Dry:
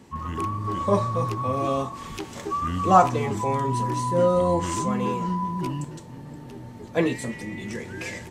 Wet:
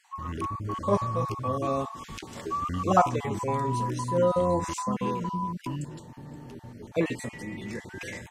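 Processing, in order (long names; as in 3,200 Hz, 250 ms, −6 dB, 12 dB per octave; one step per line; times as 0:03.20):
time-frequency cells dropped at random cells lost 21%
level −3 dB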